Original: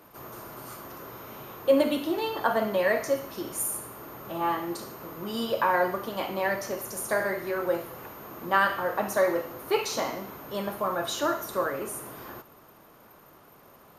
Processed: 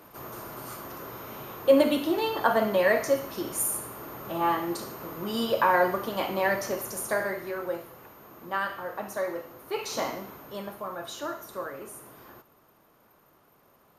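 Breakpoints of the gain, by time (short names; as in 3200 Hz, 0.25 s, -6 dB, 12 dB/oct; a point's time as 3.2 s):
6.74 s +2 dB
8 s -7 dB
9.72 s -7 dB
10.03 s 0 dB
10.84 s -7.5 dB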